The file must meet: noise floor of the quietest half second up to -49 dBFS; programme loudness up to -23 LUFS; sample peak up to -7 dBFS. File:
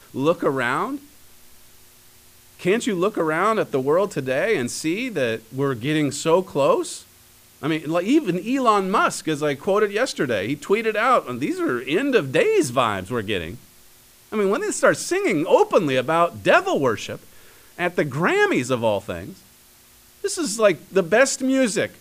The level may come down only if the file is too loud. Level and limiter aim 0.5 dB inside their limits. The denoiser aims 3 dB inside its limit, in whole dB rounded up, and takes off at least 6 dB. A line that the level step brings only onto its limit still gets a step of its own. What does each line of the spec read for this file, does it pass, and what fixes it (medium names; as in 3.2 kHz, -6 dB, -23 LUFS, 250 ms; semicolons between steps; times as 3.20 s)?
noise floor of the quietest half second -52 dBFS: pass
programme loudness -21.0 LUFS: fail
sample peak -4.0 dBFS: fail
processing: trim -2.5 dB; peak limiter -7.5 dBFS